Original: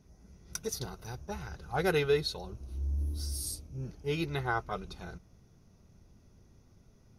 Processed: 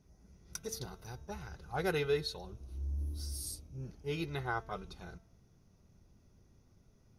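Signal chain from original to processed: de-hum 223.8 Hz, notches 17; gain -4.5 dB

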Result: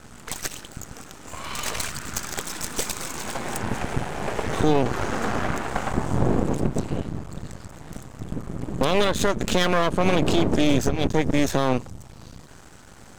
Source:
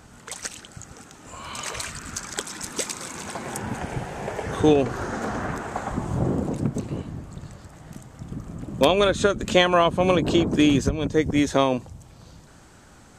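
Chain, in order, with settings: half-wave rectifier; limiter -14.5 dBFS, peak gain reduction 10 dB; gain +7 dB

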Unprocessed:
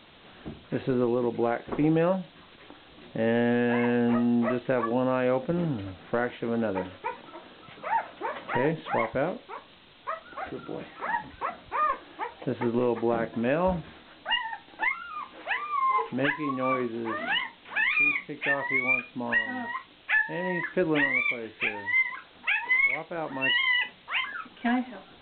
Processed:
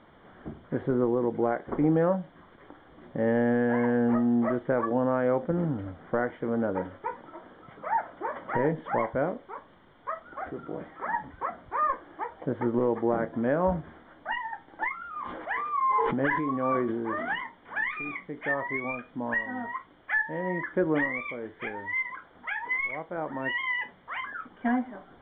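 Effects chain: polynomial smoothing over 41 samples; 14.96–17.34 sustainer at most 27 dB/s

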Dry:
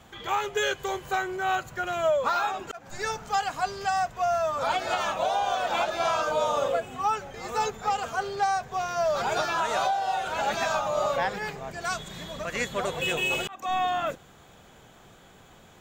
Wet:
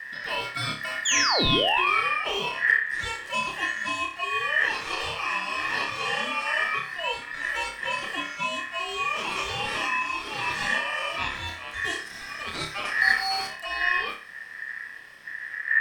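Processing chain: wind noise 99 Hz -28 dBFS; bell 270 Hz -6.5 dB 0.6 oct; in parallel at 0 dB: compressor, threshold -32 dBFS, peak gain reduction 21 dB; on the sum: painted sound fall, 1.05–2, 450–5400 Hz -17 dBFS; on a send: flutter echo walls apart 5 m, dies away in 0.38 s; on the sum: ring modulator 1800 Hz; gain -4.5 dB

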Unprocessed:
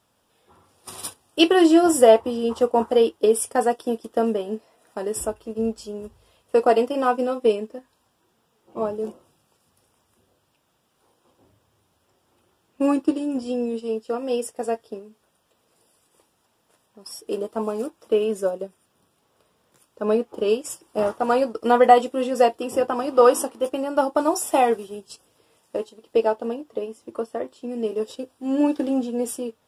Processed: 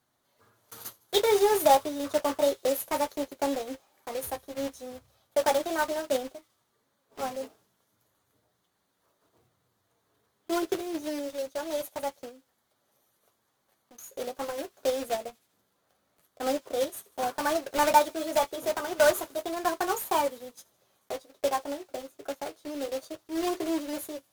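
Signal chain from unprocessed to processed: block floating point 3-bit; flange 0.13 Hz, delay 9.9 ms, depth 3.2 ms, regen -42%; varispeed +22%; thin delay 78 ms, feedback 64%, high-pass 3000 Hz, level -24 dB; gain -4 dB

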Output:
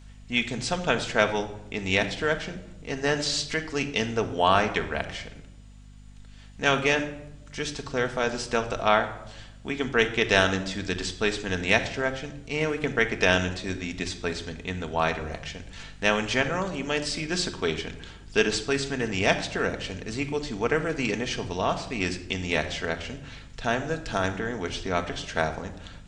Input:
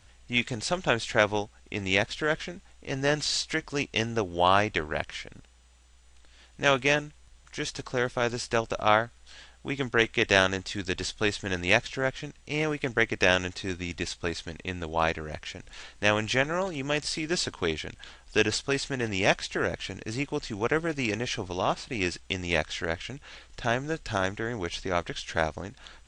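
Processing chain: shoebox room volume 3000 m³, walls furnished, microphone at 1.6 m; hum 50 Hz, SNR 20 dB

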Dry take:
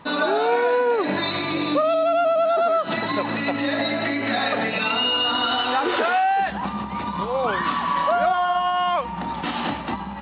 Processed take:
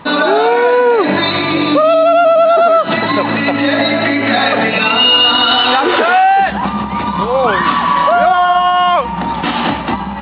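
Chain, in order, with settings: 5–5.81 high shelf 3900 Hz +10.5 dB; maximiser +11.5 dB; gain -1 dB

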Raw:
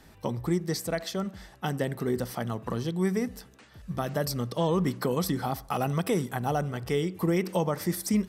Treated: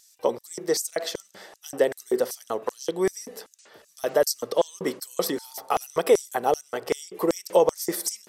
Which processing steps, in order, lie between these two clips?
LFO high-pass square 2.6 Hz 460–6300 Hz; 5.29–5.74 whine 900 Hz -55 dBFS; vibrato 12 Hz 21 cents; gain +4.5 dB

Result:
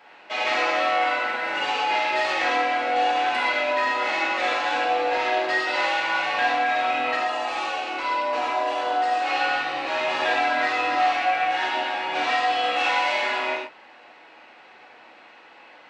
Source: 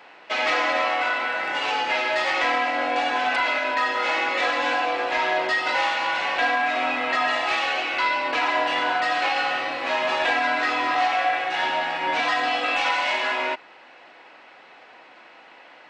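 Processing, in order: 7.15–9.27 ten-band EQ 125 Hz -9 dB, 2000 Hz -7 dB, 4000 Hz -4 dB; reverb, pre-delay 3 ms, DRR -3.5 dB; gain -5.5 dB

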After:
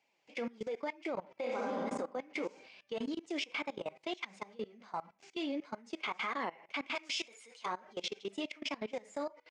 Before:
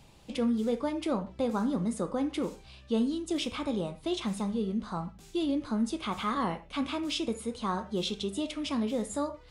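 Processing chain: flange 1.9 Hz, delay 2.4 ms, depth 5.3 ms, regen +34%; speaker cabinet 490–6300 Hz, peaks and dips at 1200 Hz -6 dB, 2200 Hz +9 dB, 3800 Hz -8 dB; 1.39–1.81 reverb throw, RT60 1.4 s, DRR -3.5 dB; limiter -31.5 dBFS, peak gain reduction 8 dB; 6.95–7.66 tilt +4 dB/oct; speakerphone echo 0.19 s, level -28 dB; level quantiser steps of 21 dB; gain +6 dB

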